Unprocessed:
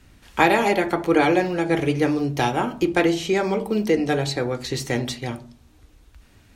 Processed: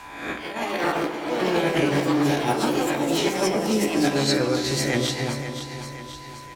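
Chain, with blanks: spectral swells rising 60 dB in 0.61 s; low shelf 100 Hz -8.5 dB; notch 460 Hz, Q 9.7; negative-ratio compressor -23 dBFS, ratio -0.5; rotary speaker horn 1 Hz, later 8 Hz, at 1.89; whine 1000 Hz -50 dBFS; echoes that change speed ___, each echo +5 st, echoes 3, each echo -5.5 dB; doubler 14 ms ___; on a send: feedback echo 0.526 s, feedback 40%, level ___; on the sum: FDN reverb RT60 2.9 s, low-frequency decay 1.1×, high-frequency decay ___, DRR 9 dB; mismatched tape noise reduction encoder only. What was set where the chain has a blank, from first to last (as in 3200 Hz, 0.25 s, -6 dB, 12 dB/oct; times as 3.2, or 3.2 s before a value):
0.235 s, -11 dB, -11 dB, 0.55×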